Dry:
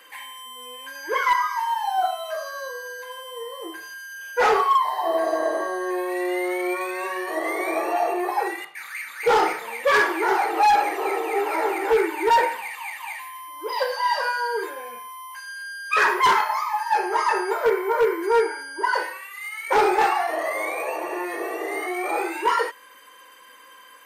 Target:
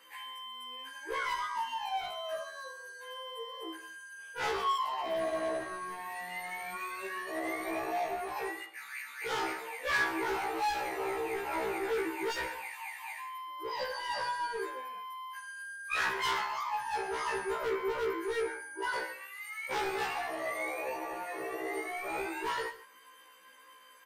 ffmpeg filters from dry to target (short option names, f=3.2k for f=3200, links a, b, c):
-filter_complex "[0:a]acrossover=split=210|1700[a][b][c];[b]asoftclip=type=hard:threshold=-25dB[d];[a][d][c]amix=inputs=3:normalize=0,aecho=1:1:137:0.15,afftfilt=real='re*1.73*eq(mod(b,3),0)':imag='im*1.73*eq(mod(b,3),0)':win_size=2048:overlap=0.75,volume=-6.5dB"